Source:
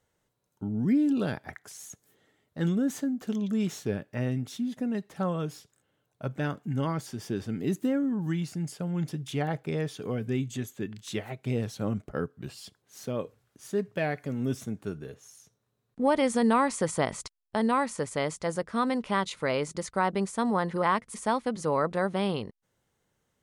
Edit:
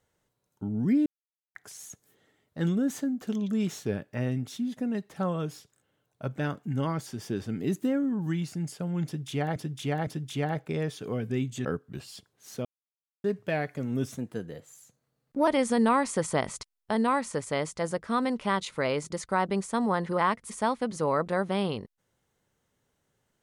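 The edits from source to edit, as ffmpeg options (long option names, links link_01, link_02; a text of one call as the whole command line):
ffmpeg -i in.wav -filter_complex "[0:a]asplit=10[link_01][link_02][link_03][link_04][link_05][link_06][link_07][link_08][link_09][link_10];[link_01]atrim=end=1.06,asetpts=PTS-STARTPTS,afade=type=out:start_time=1.056:duration=0.004:curve=hsin[link_11];[link_02]atrim=start=1.06:end=1.55,asetpts=PTS-STARTPTS,volume=0[link_12];[link_03]atrim=start=1.55:end=9.562,asetpts=PTS-STARTPTS,afade=type=in:duration=0.004:curve=hsin[link_13];[link_04]atrim=start=9.048:end=9.562[link_14];[link_05]atrim=start=9.048:end=10.632[link_15];[link_06]atrim=start=12.138:end=13.14,asetpts=PTS-STARTPTS,afade=type=out:start_time=0.998:duration=0.004:curve=hsin[link_16];[link_07]atrim=start=13.14:end=13.73,asetpts=PTS-STARTPTS,volume=0[link_17];[link_08]atrim=start=13.73:end=14.674,asetpts=PTS-STARTPTS,afade=type=in:duration=0.004:curve=hsin[link_18];[link_09]atrim=start=14.67:end=16.12,asetpts=PTS-STARTPTS,asetrate=49392,aresample=44100[link_19];[link_10]atrim=start=16.116[link_20];[link_11][link_12][link_13]concat=n=3:v=0:a=1[link_21];[link_21][link_14]acrossfade=duration=0.004:curve1=hsin:curve2=hsin[link_22];[link_22][link_15]acrossfade=duration=0.004:curve1=hsin:curve2=hsin[link_23];[link_16][link_17][link_18]concat=n=3:v=0:a=1[link_24];[link_23][link_24]acrossfade=duration=0.004:curve1=hsin:curve2=hsin[link_25];[link_25][link_19]acrossfade=duration=0.004:curve1=hsin:curve2=hsin[link_26];[link_26][link_20]acrossfade=duration=0.004:curve1=hsin:curve2=hsin" out.wav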